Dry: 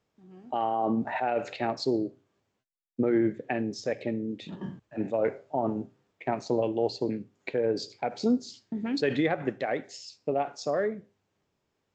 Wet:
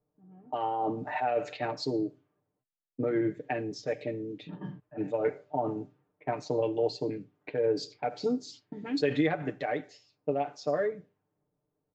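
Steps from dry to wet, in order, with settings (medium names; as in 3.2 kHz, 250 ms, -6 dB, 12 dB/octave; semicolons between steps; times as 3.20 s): level-controlled noise filter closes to 760 Hz, open at -27 dBFS; comb 6.7 ms, depth 77%; trim -4 dB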